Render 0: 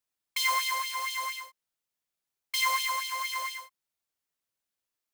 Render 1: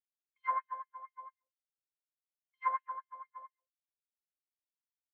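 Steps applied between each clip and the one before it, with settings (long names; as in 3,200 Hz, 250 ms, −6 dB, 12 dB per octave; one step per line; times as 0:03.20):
noise reduction from a noise print of the clip's start 14 dB
Chebyshev low-pass filter 1,600 Hz, order 3
expander for the loud parts 2.5 to 1, over −50 dBFS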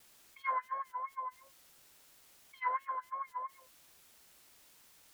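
dynamic equaliser 1,000 Hz, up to −4 dB, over −43 dBFS
pitch vibrato 2.9 Hz 64 cents
envelope flattener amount 50%
level +1 dB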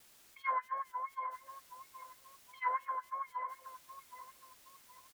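repeating echo 769 ms, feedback 34%, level −13 dB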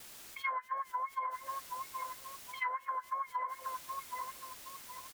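downward compressor 16 to 1, threshold −44 dBFS, peak gain reduction 16 dB
level +11 dB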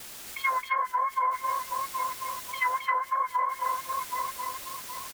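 single-tap delay 267 ms −3.5 dB
level +8.5 dB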